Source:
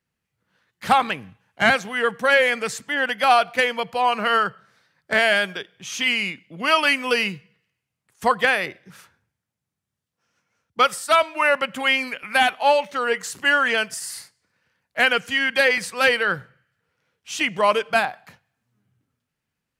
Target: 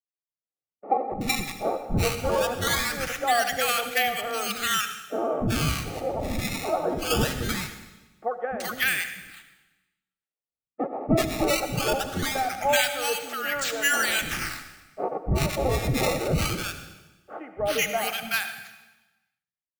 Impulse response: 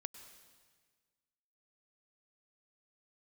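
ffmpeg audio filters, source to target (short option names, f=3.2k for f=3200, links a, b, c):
-filter_complex "[0:a]agate=range=-30dB:threshold=-47dB:ratio=16:detection=peak,aemphasis=mode=production:type=50kf,acrusher=samples=16:mix=1:aa=0.000001:lfo=1:lforange=25.6:lforate=0.21,asuperstop=centerf=1000:order=12:qfactor=6.1,acrossover=split=320|1100[a][b][c];[a]adelay=290[d];[c]adelay=380[e];[d][b][e]amix=inputs=3:normalize=0[f];[1:a]atrim=start_sample=2205,asetrate=61740,aresample=44100[g];[f][g]afir=irnorm=-1:irlink=0,volume=2.5dB"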